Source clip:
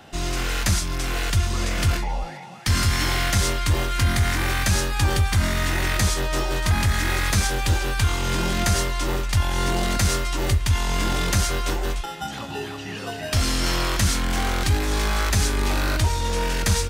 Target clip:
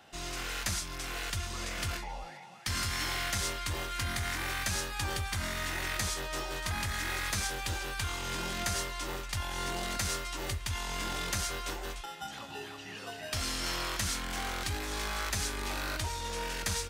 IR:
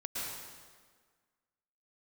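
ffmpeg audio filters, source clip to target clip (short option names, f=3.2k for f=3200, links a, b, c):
-af "lowshelf=f=420:g=-8.5,volume=-8.5dB"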